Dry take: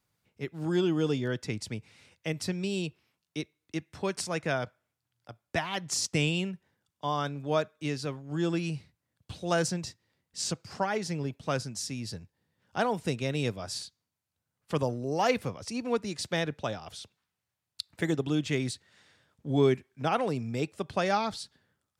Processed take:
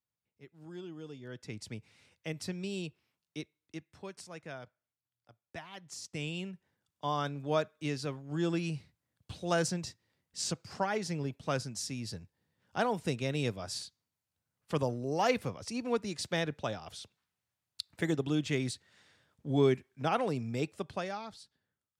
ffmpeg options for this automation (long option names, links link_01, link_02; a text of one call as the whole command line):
ffmpeg -i in.wav -af "volume=6dB,afade=type=in:start_time=1.19:duration=0.52:silence=0.251189,afade=type=out:start_time=3.38:duration=0.75:silence=0.375837,afade=type=in:start_time=6.04:duration=1.02:silence=0.251189,afade=type=out:start_time=20.73:duration=0.41:silence=0.298538" out.wav